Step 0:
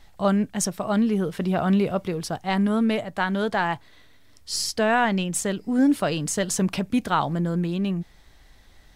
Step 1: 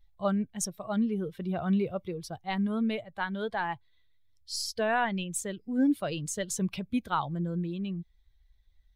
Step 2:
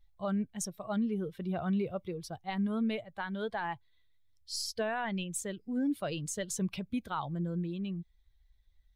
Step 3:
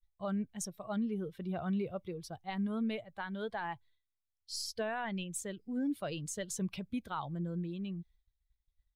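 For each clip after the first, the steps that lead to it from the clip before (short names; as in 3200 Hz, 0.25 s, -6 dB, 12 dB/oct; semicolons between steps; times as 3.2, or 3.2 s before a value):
per-bin expansion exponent 1.5; gain -5 dB
limiter -22.5 dBFS, peak gain reduction 6 dB; gain -2.5 dB
expander -55 dBFS; gain -3 dB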